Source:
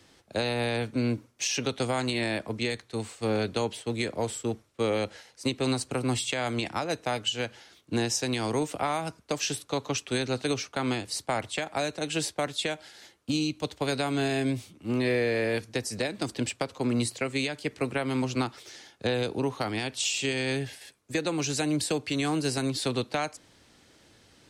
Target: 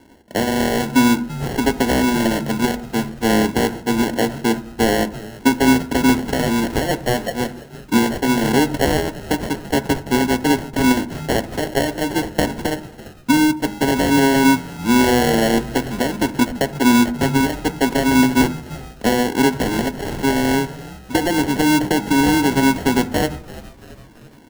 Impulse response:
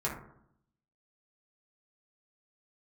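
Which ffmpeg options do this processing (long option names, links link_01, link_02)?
-filter_complex "[0:a]equalizer=frequency=125:width_type=o:width=1:gain=-12,equalizer=frequency=250:width_type=o:width=1:gain=10,equalizer=frequency=500:width_type=o:width=1:gain=-4,equalizer=frequency=1000:width_type=o:width=1:gain=4,equalizer=frequency=4000:width_type=o:width=1:gain=-9,equalizer=frequency=8000:width_type=o:width=1:gain=-6,acrusher=samples=36:mix=1:aa=0.000001,asplit=6[link_01][link_02][link_03][link_04][link_05][link_06];[link_02]adelay=337,afreqshift=-98,volume=-18dB[link_07];[link_03]adelay=674,afreqshift=-196,volume=-23.4dB[link_08];[link_04]adelay=1011,afreqshift=-294,volume=-28.7dB[link_09];[link_05]adelay=1348,afreqshift=-392,volume=-34.1dB[link_10];[link_06]adelay=1685,afreqshift=-490,volume=-39.4dB[link_11];[link_01][link_07][link_08][link_09][link_10][link_11]amix=inputs=6:normalize=0,asplit=2[link_12][link_13];[1:a]atrim=start_sample=2205[link_14];[link_13][link_14]afir=irnorm=-1:irlink=0,volume=-16dB[link_15];[link_12][link_15]amix=inputs=2:normalize=0,volume=8.5dB"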